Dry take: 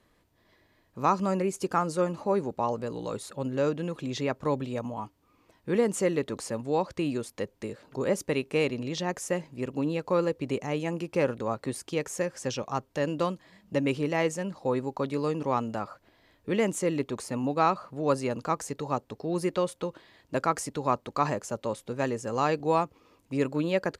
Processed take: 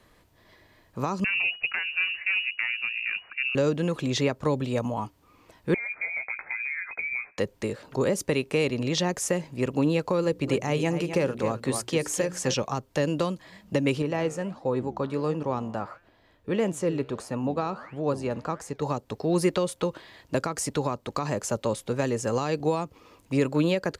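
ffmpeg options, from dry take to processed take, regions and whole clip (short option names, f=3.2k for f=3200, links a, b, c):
-filter_complex "[0:a]asettb=1/sr,asplit=3[a][b][c];[a]atrim=end=1.244[d];[b]atrim=start=1.24:end=3.55,asetpts=PTS-STARTPTS,afade=t=in:d=0.004:c=qsin,afade=t=out:st=2.306:d=0.004:c=qsin,aeval=exprs='(tanh(8.91*val(0)+0.7)-tanh(0.7))/8.91':c=same,lowpass=f=2.5k:t=q:w=0.5098,lowpass=f=2.5k:t=q:w=0.6013,lowpass=f=2.5k:t=q:w=0.9,lowpass=f=2.5k:t=q:w=2.563,afreqshift=-2900[e];[c]atrim=start=3.546[f];[d][e]acrossfade=d=0.004:c1=hsin:c2=qsin[g];[g][f]acrossfade=d=0.004:c1=qsin:c2=hsin,asettb=1/sr,asplit=3[h][i][j];[h]atrim=end=5.744[k];[i]atrim=start=5.74:end=7.38,asetpts=PTS-STARTPTS,afade=t=in:d=0.004:c=qsin,afade=t=out:st=1.636:d=0.004:c=qsin,acompressor=threshold=-35dB:ratio=16:attack=3.2:release=140:knee=1:detection=peak,asplit=2[l][m];[m]adelay=16,volume=-7dB[n];[l][n]amix=inputs=2:normalize=0,atrim=end_sample=72324,lowpass=f=2.2k:t=q:w=0.5098,lowpass=f=2.2k:t=q:w=0.6013,lowpass=f=2.2k:t=q:w=0.9,lowpass=f=2.2k:t=q:w=2.563,afreqshift=-2600[o];[j]atrim=start=7.376[p];[k][o]acrossfade=d=0.004:c1=hsin:c2=qsin[q];[q][p]acrossfade=d=0.004:c1=qsin:c2=hsin,asettb=1/sr,asplit=3[r][s][t];[r]atrim=end=10.224[u];[s]atrim=start=10.22:end=12.54,asetpts=PTS-STARTPTS,afade=t=in:d=0.004:c=qsin,afade=t=out:st=2.316:d=0.004:c=qsin,bandreject=f=60:t=h:w=6,bandreject=f=120:t=h:w=6,bandreject=f=180:t=h:w=6,bandreject=f=240:t=h:w=6,bandreject=f=300:t=h:w=6,bandreject=f=360:t=h:w=6,bandreject=f=420:t=h:w=6,deesser=0.25,aecho=1:1:256:0.266,atrim=end_sample=102312[v];[t]atrim=start=12.536[w];[u][v]acrossfade=d=0.004:c1=hsin:c2=qsin[x];[x][w]acrossfade=d=0.004:c1=qsin:c2=hsin,asettb=1/sr,asplit=3[y][z][aa];[y]atrim=end=14.024[ab];[z]atrim=start=14.02:end=18.82,asetpts=PTS-STARTPTS,afade=t=in:d=0.004:c=qsin,afade=t=out:st=4.796:d=0.004:c=qsin,highshelf=f=3k:g=-8,bandreject=f=2.1k:w=11,flanger=delay=5.7:depth=9.9:regen=88:speed=1.5:shape=sinusoidal[ac];[aa]atrim=start=18.816[ad];[ab][ac]acrossfade=d=0.004:c1=hsin:c2=qsin[ae];[ae][ad]acrossfade=d=0.004:c1=qsin:c2=hsin,equalizer=f=270:t=o:w=1.4:g=-3,alimiter=limit=-20dB:level=0:latency=1:release=209,acrossover=split=470|3000[af][ag][ah];[ag]acompressor=threshold=-37dB:ratio=6[ai];[af][ai][ah]amix=inputs=3:normalize=0,volume=8dB"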